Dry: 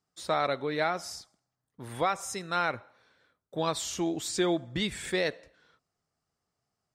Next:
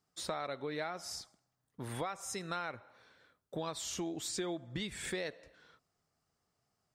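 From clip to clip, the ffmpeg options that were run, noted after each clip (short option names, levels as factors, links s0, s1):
-af "acompressor=threshold=0.0112:ratio=4,volume=1.19"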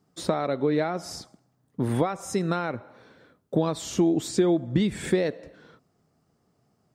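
-af "equalizer=f=230:w=0.35:g=15,volume=1.58"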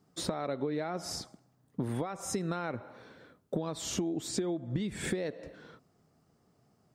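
-af "acompressor=threshold=0.0316:ratio=8"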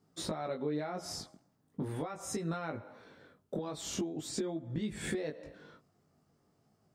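-af "flanger=delay=18.5:depth=2.5:speed=0.42"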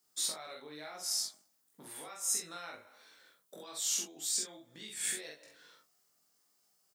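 -af "aderivative,aecho=1:1:46|67:0.708|0.266,volume=2.82"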